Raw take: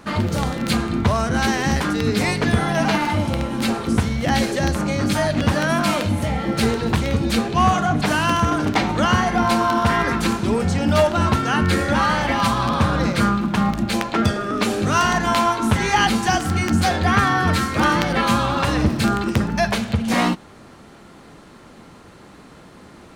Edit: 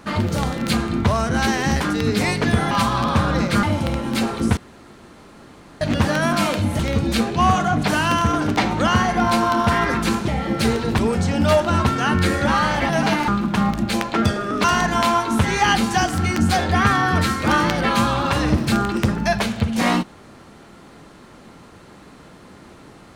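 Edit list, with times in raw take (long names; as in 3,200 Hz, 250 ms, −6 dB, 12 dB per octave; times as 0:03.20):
0:02.71–0:03.10: swap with 0:12.36–0:13.28
0:04.04–0:05.28: fill with room tone
0:06.26–0:06.97: move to 0:10.46
0:14.64–0:14.96: remove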